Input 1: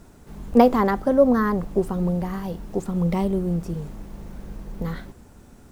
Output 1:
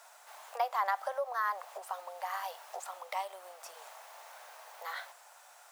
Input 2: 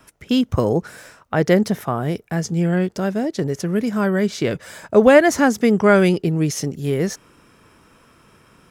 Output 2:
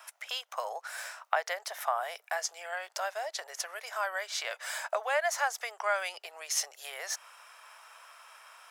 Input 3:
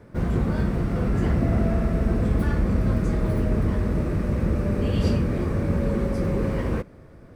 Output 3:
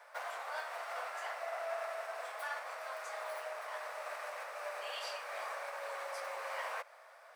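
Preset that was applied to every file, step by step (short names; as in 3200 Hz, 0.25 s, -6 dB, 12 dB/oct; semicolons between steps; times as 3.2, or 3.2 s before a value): compressor 4:1, threshold -25 dBFS; steep high-pass 640 Hz 48 dB/oct; gain +2 dB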